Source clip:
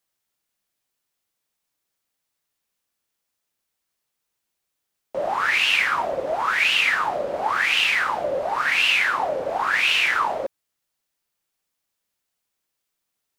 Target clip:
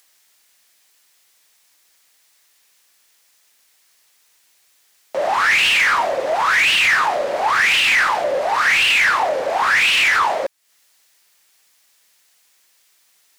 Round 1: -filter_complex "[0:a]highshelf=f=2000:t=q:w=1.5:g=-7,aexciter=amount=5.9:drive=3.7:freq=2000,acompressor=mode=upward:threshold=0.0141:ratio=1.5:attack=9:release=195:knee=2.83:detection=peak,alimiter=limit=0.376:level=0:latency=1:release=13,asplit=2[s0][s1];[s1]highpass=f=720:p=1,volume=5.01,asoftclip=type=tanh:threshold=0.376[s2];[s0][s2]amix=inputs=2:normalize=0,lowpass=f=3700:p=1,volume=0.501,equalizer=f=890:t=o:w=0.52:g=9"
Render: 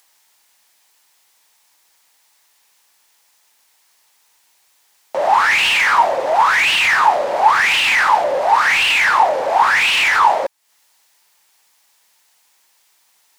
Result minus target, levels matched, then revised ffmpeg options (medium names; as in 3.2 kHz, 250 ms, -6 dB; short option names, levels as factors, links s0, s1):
1 kHz band +4.0 dB
-filter_complex "[0:a]highshelf=f=2000:t=q:w=1.5:g=-7,aexciter=amount=5.9:drive=3.7:freq=2000,acompressor=mode=upward:threshold=0.0141:ratio=1.5:attack=9:release=195:knee=2.83:detection=peak,alimiter=limit=0.376:level=0:latency=1:release=13,asplit=2[s0][s1];[s1]highpass=f=720:p=1,volume=5.01,asoftclip=type=tanh:threshold=0.376[s2];[s0][s2]amix=inputs=2:normalize=0,lowpass=f=3700:p=1,volume=0.501"